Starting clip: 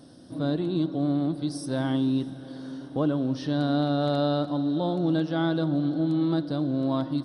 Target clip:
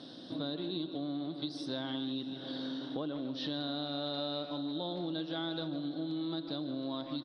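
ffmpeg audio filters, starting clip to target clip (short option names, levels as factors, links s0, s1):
-filter_complex "[0:a]highpass=190,asplit=2[s0][s1];[s1]adelay=150,highpass=300,lowpass=3400,asoftclip=type=hard:threshold=0.0708,volume=0.355[s2];[s0][s2]amix=inputs=2:normalize=0,acompressor=threshold=0.0126:ratio=5,lowpass=f=3800:t=q:w=4.5,volume=1.19"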